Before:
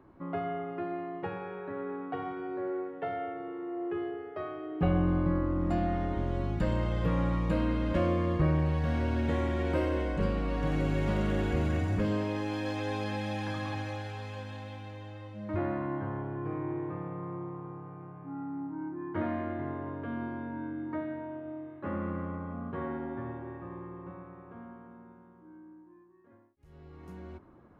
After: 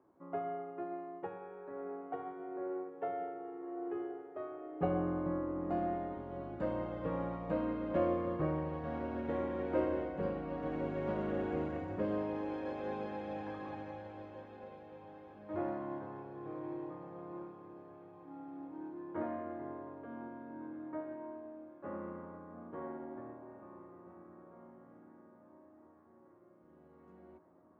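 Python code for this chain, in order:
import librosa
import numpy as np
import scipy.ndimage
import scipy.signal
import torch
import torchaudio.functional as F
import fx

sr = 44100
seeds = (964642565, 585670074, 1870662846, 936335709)

y = fx.bandpass_q(x, sr, hz=590.0, q=0.79)
y = fx.echo_diffused(y, sr, ms=1777, feedback_pct=54, wet_db=-12.0)
y = fx.upward_expand(y, sr, threshold_db=-44.0, expansion=1.5)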